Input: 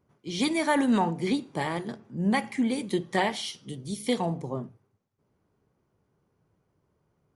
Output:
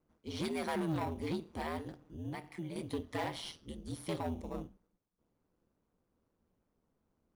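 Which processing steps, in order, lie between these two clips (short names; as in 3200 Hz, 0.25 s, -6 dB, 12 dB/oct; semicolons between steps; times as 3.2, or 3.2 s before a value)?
in parallel at -11 dB: sample-and-hold 14×; on the sum: dynamic EQ 7000 Hz, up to -7 dB, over -58 dBFS, Q 2.9; 1.87–2.76 compressor 2:1, threshold -37 dBFS, peak gain reduction 10 dB; soft clip -22 dBFS, distortion -11 dB; ring modulator 80 Hz; gain -6 dB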